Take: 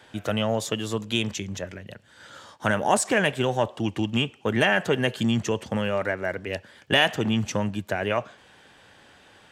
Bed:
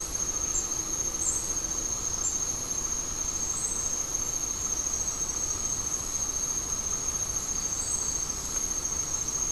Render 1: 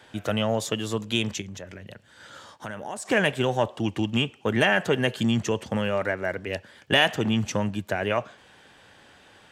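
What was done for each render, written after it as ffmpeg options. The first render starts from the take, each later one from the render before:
ffmpeg -i in.wav -filter_complex "[0:a]asettb=1/sr,asplit=3[link_01][link_02][link_03];[link_01]atrim=end=1.414[link_04];[link_02]atrim=start=1.41:end=3.09,asetpts=PTS-STARTPTS,afade=type=in:duration=0.004:curve=qsin,afade=type=out:start_time=1.676:duration=0.004:curve=qsin,acompressor=threshold=-37dB:ratio=2.5:attack=3.2:release=140:knee=1:detection=peak[link_05];[link_03]atrim=start=3.086[link_06];[link_04][link_05]acrossfade=duration=0.004:curve1=hsin:curve2=qsin[link_07];[link_07][link_06]acrossfade=duration=0.004:curve1=qsin:curve2=hsin" out.wav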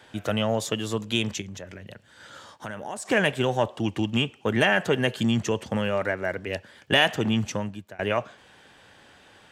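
ffmpeg -i in.wav -filter_complex "[0:a]asplit=2[link_01][link_02];[link_01]atrim=end=7.99,asetpts=PTS-STARTPTS,afade=type=out:start_time=7.38:duration=0.61:silence=0.0668344[link_03];[link_02]atrim=start=7.99,asetpts=PTS-STARTPTS,afade=type=in:duration=0.004:curve=hsin:silence=0.0668344[link_04];[link_03][link_04]concat=n=2:v=0:a=1" out.wav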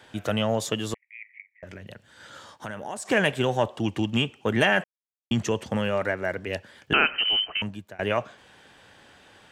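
ffmpeg -i in.wav -filter_complex "[0:a]asettb=1/sr,asplit=3[link_01][link_02][link_03];[link_01]atrim=end=0.944[link_04];[link_02]atrim=start=0.94:end=1.63,asetpts=PTS-STARTPTS,afade=type=in:duration=0.004:curve=qsin,afade=type=out:start_time=0.686:duration=0.004:curve=qsin,asuperpass=centerf=2100:order=8:qfactor=4.4[link_05];[link_03]atrim=start=1.626[link_06];[link_04][link_05]acrossfade=duration=0.004:curve1=hsin:curve2=qsin[link_07];[link_07][link_06]acrossfade=duration=0.004:curve1=qsin:curve2=hsin,asettb=1/sr,asplit=3[link_08][link_09][link_10];[link_08]atrim=end=6.934[link_11];[link_09]atrim=start=6.93:end=7.62,asetpts=PTS-STARTPTS,afade=type=in:duration=0.004:curve=qsin,afade=type=out:start_time=0.686:duration=0.004:curve=qsin,lowpass=frequency=2700:width_type=q:width=0.5098,lowpass=frequency=2700:width_type=q:width=0.6013,lowpass=frequency=2700:width_type=q:width=0.9,lowpass=frequency=2700:width_type=q:width=2.563,afreqshift=-3200[link_12];[link_10]atrim=start=7.616[link_13];[link_11][link_12]acrossfade=duration=0.004:curve1=hsin:curve2=qsin[link_14];[link_14][link_13]acrossfade=duration=0.004:curve1=qsin:curve2=hsin,asplit=3[link_15][link_16][link_17];[link_15]atrim=end=4.84,asetpts=PTS-STARTPTS,afade=type=out:start_time=4.836:duration=0.004:curve=hsin[link_18];[link_16]atrim=start=4.84:end=5.31,asetpts=PTS-STARTPTS,volume=0[link_19];[link_17]atrim=start=5.31,asetpts=PTS-STARTPTS,afade=type=in:duration=0.004:curve=hsin[link_20];[link_18][link_19][link_20]concat=n=3:v=0:a=1" out.wav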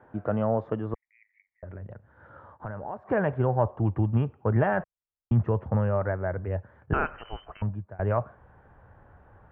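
ffmpeg -i in.wav -af "lowpass=frequency=1300:width=0.5412,lowpass=frequency=1300:width=1.3066,asubboost=boost=7.5:cutoff=91" out.wav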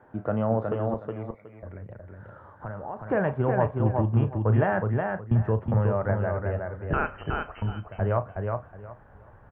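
ffmpeg -i in.wav -filter_complex "[0:a]asplit=2[link_01][link_02];[link_02]adelay=36,volume=-12.5dB[link_03];[link_01][link_03]amix=inputs=2:normalize=0,aecho=1:1:367|734|1101:0.631|0.133|0.0278" out.wav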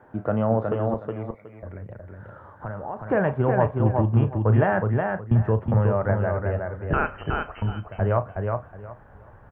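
ffmpeg -i in.wav -af "volume=3dB" out.wav

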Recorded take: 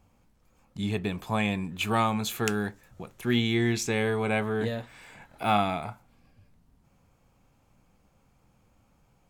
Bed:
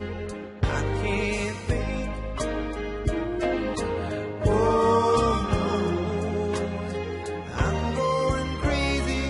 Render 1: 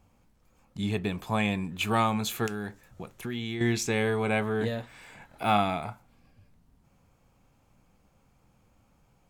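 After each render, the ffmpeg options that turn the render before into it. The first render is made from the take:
ffmpeg -i in.wav -filter_complex "[0:a]asettb=1/sr,asplit=3[link_01][link_02][link_03];[link_01]atrim=end=2.464[link_04];[link_02]atrim=start=2.46:end=3.61,asetpts=PTS-STARTPTS,afade=type=in:duration=0.004:curve=qsin,afade=type=out:start_time=1.146:duration=0.004:curve=qsin,acompressor=threshold=-30dB:ratio=6:attack=3.2:release=140:knee=1:detection=peak[link_05];[link_03]atrim=start=3.606[link_06];[link_04][link_05]acrossfade=duration=0.004:curve1=hsin:curve2=qsin[link_07];[link_07][link_06]acrossfade=duration=0.004:curve1=qsin:curve2=hsin" out.wav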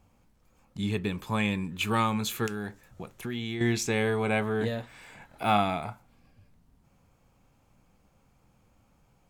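ffmpeg -i in.wav -filter_complex "[0:a]asettb=1/sr,asplit=3[link_01][link_02][link_03];[link_01]atrim=end=0.814[link_04];[link_02]atrim=start=0.81:end=2.57,asetpts=PTS-STARTPTS,afade=type=in:duration=0.004:curve=qsin,afade=type=out:start_time=1.756:duration=0.004:curve=qsin,equalizer=frequency=700:width=6.3:gain=-13.5[link_05];[link_03]atrim=start=2.566[link_06];[link_04][link_05]acrossfade=duration=0.004:curve1=hsin:curve2=qsin[link_07];[link_07][link_06]acrossfade=duration=0.004:curve1=qsin:curve2=hsin" out.wav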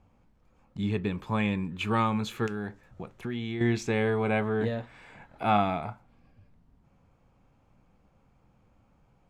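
ffmpeg -i in.wav -af "aemphasis=mode=reproduction:type=75fm" out.wav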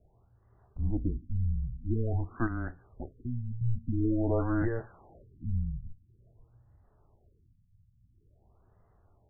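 ffmpeg -i in.wav -af "afreqshift=-120,afftfilt=real='re*lt(b*sr/1024,200*pow(2100/200,0.5+0.5*sin(2*PI*0.48*pts/sr)))':imag='im*lt(b*sr/1024,200*pow(2100/200,0.5+0.5*sin(2*PI*0.48*pts/sr)))':win_size=1024:overlap=0.75" out.wav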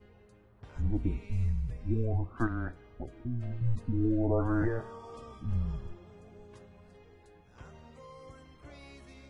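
ffmpeg -i in.wav -i bed.wav -filter_complex "[1:a]volume=-26.5dB[link_01];[0:a][link_01]amix=inputs=2:normalize=0" out.wav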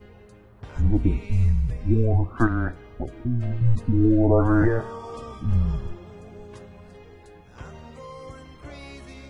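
ffmpeg -i in.wav -af "volume=10dB" out.wav

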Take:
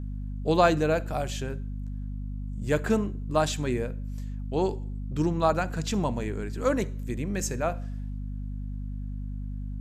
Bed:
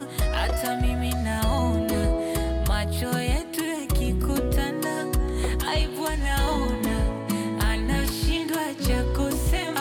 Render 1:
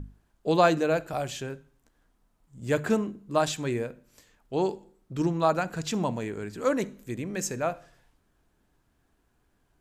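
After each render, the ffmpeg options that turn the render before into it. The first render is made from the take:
ffmpeg -i in.wav -af "bandreject=frequency=50:width_type=h:width=6,bandreject=frequency=100:width_type=h:width=6,bandreject=frequency=150:width_type=h:width=6,bandreject=frequency=200:width_type=h:width=6,bandreject=frequency=250:width_type=h:width=6" out.wav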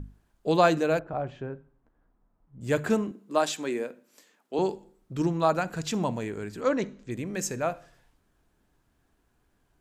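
ffmpeg -i in.wav -filter_complex "[0:a]asettb=1/sr,asplit=3[link_01][link_02][link_03];[link_01]atrim=end=0.994[link_04];[link_02]atrim=start=0.99:end=2.61,asetpts=PTS-STARTPTS,afade=type=in:duration=0.004:curve=qsin,afade=type=out:start_time=1.616:duration=0.004:curve=qsin,lowpass=1300[link_05];[link_03]atrim=start=2.606[link_06];[link_04][link_05]acrossfade=duration=0.004:curve1=hsin:curve2=qsin[link_07];[link_07][link_06]acrossfade=duration=0.004:curve1=qsin:curve2=hsin,asettb=1/sr,asplit=3[link_08][link_09][link_10];[link_08]atrim=end=3.114[link_11];[link_09]atrim=start=3.11:end=4.59,asetpts=PTS-STARTPTS,afade=type=in:duration=0.004:curve=qsin,afade=type=out:start_time=1.476:duration=0.004:curve=qsin,highpass=frequency=220:width=0.5412,highpass=frequency=220:width=1.3066[link_12];[link_10]atrim=start=4.586[link_13];[link_11][link_12]acrossfade=duration=0.004:curve1=hsin:curve2=qsin[link_14];[link_14][link_13]acrossfade=duration=0.004:curve1=qsin:curve2=hsin,asplit=3[link_15][link_16][link_17];[link_15]afade=type=out:start_time=6.6:duration=0.02[link_18];[link_16]lowpass=frequency=6200:width=0.5412,lowpass=frequency=6200:width=1.3066,afade=type=in:start_time=6.6:duration=0.02,afade=type=out:start_time=7.1:duration=0.02[link_19];[link_17]afade=type=in:start_time=7.1:duration=0.02[link_20];[link_18][link_19][link_20]amix=inputs=3:normalize=0" out.wav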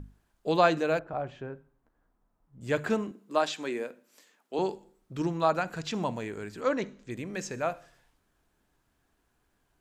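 ffmpeg -i in.wav -filter_complex "[0:a]acrossover=split=5700[link_01][link_02];[link_02]acompressor=threshold=-56dB:ratio=4:attack=1:release=60[link_03];[link_01][link_03]amix=inputs=2:normalize=0,lowshelf=frequency=490:gain=-5" out.wav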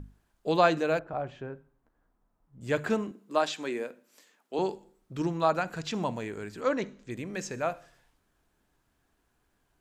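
ffmpeg -i in.wav -af anull out.wav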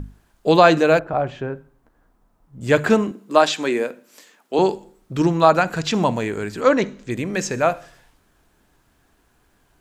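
ffmpeg -i in.wav -af "volume=12dB,alimiter=limit=-1dB:level=0:latency=1" out.wav

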